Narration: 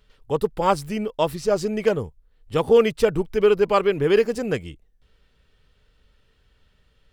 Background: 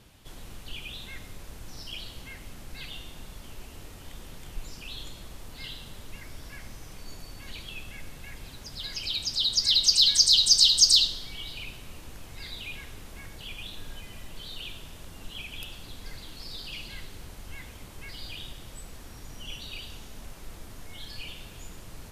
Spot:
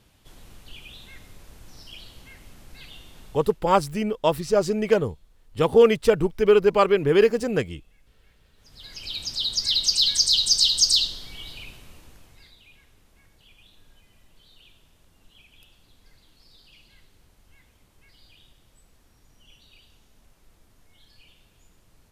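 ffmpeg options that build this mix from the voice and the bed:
ffmpeg -i stem1.wav -i stem2.wav -filter_complex "[0:a]adelay=3050,volume=0.5dB[link_01];[1:a]volume=17.5dB,afade=type=out:start_time=3.27:duration=0.36:silence=0.125893,afade=type=in:start_time=8.55:duration=0.69:silence=0.0841395,afade=type=out:start_time=11.49:duration=1.07:silence=0.188365[link_02];[link_01][link_02]amix=inputs=2:normalize=0" out.wav

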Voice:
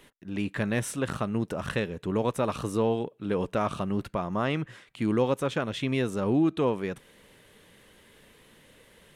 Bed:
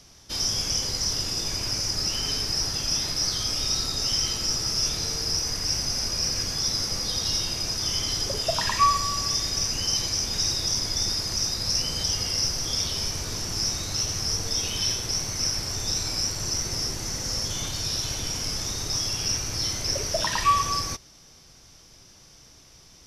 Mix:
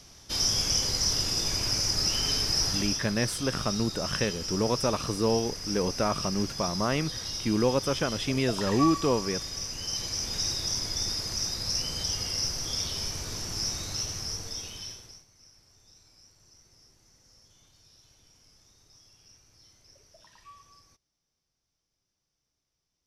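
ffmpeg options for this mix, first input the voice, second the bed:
ffmpeg -i stem1.wav -i stem2.wav -filter_complex "[0:a]adelay=2450,volume=0dB[link_01];[1:a]volume=4.5dB,afade=type=out:start_time=2.73:duration=0.28:silence=0.354813,afade=type=in:start_time=9.77:duration=0.54:silence=0.595662,afade=type=out:start_time=13.85:duration=1.4:silence=0.0473151[link_02];[link_01][link_02]amix=inputs=2:normalize=0" out.wav

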